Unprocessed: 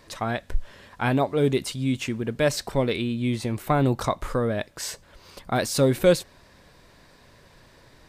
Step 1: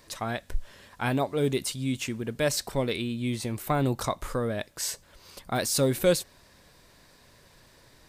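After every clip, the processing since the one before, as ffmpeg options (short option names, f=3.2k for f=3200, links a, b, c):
-af "highshelf=f=5.1k:g=9.5,volume=-4.5dB"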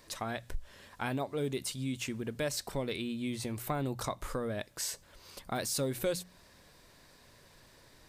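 -af "bandreject=f=60:t=h:w=6,bandreject=f=120:t=h:w=6,bandreject=f=180:t=h:w=6,acompressor=threshold=-32dB:ratio=2,volume=-2.5dB"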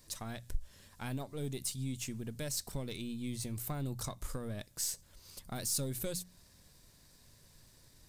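-af "aeval=exprs='if(lt(val(0),0),0.708*val(0),val(0))':c=same,bass=f=250:g=11,treble=f=4k:g=12,volume=-8.5dB"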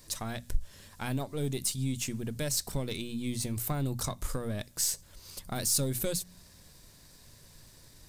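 -af "bandreject=f=60:t=h:w=6,bandreject=f=120:t=h:w=6,bandreject=f=180:t=h:w=6,bandreject=f=240:t=h:w=6,volume=6.5dB"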